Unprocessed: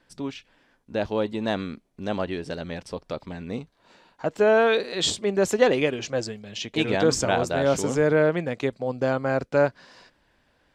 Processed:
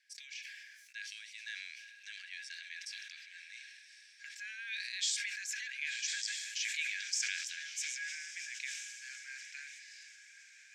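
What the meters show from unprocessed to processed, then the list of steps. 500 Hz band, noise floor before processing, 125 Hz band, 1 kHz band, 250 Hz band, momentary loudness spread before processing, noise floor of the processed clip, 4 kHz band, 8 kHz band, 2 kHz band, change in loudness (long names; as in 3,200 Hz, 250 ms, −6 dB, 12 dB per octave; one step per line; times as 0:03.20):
below −40 dB, −66 dBFS, below −40 dB, below −40 dB, below −40 dB, 15 LU, −59 dBFS, −7.5 dB, −3.5 dB, −8.5 dB, −14.5 dB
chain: downward compressor 3 to 1, threshold −27 dBFS, peak gain reduction 11 dB
Chebyshev high-pass with heavy ripple 1,600 Hz, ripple 9 dB
feedback delay with all-pass diffusion 1,139 ms, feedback 46%, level −10.5 dB
level that may fall only so fast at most 32 dB per second
level +1 dB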